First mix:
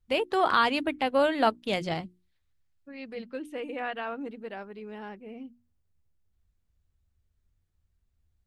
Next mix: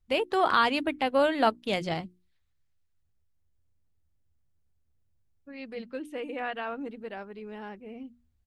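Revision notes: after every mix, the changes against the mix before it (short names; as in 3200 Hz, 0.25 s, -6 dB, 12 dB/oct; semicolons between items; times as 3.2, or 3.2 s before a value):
second voice: entry +2.60 s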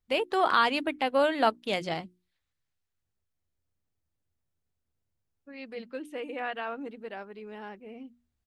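master: add low shelf 130 Hz -12 dB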